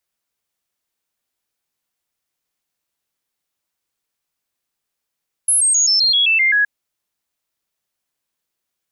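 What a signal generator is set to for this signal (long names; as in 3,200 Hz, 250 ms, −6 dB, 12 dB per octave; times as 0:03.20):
stepped sweep 10,600 Hz down, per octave 3, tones 9, 0.13 s, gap 0.00 s −11.5 dBFS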